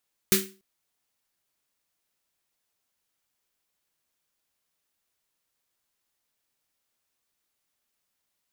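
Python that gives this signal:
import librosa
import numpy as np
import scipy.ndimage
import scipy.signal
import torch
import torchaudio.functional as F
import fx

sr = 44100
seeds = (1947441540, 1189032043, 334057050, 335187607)

y = fx.drum_snare(sr, seeds[0], length_s=0.29, hz=200.0, second_hz=380.0, noise_db=4, noise_from_hz=1400.0, decay_s=0.35, noise_decay_s=0.29)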